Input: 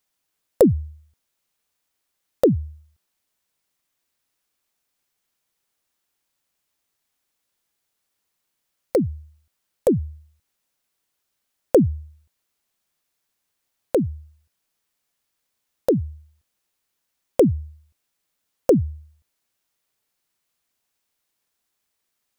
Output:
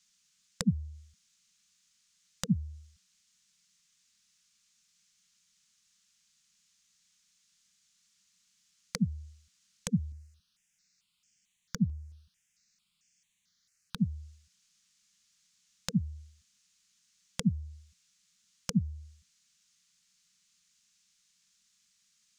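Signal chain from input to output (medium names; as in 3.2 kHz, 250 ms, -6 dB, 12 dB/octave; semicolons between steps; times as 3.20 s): elliptic band-stop 230–460 Hz; compression 3:1, threshold -32 dBFS, peak gain reduction 15.5 dB; FFT filter 120 Hz 0 dB, 180 Hz +11 dB, 580 Hz -21 dB, 1.2 kHz -1 dB, 6.7 kHz +14 dB, 15 kHz -14 dB; 10.12–13.98 s: stepped phaser 4.5 Hz 940–3900 Hz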